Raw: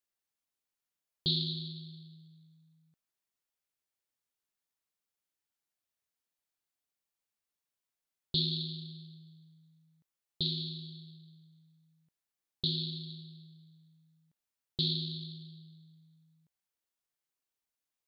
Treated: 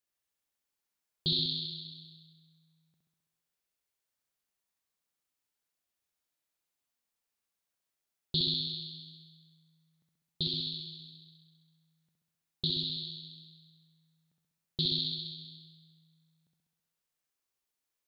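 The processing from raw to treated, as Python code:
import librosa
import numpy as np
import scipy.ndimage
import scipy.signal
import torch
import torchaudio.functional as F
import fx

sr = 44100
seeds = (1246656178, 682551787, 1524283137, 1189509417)

y = fx.room_flutter(x, sr, wall_m=11.3, rt60_s=1.2)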